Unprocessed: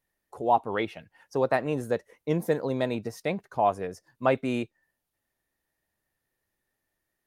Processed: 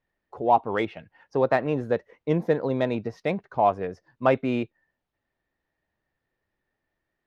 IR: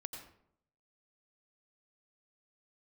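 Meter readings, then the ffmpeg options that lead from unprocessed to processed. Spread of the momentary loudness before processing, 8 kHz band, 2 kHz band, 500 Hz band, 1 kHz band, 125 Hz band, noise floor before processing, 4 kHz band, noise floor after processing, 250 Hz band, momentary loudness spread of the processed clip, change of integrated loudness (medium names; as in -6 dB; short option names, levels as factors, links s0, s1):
9 LU, under -10 dB, +2.0 dB, +3.0 dB, +3.0 dB, +3.0 dB, -83 dBFS, -0.5 dB, -83 dBFS, +3.0 dB, 8 LU, +3.0 dB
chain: -af "equalizer=f=8900:t=o:w=0.93:g=-14,adynamicsmooth=sensitivity=3:basefreq=5000,volume=1.41"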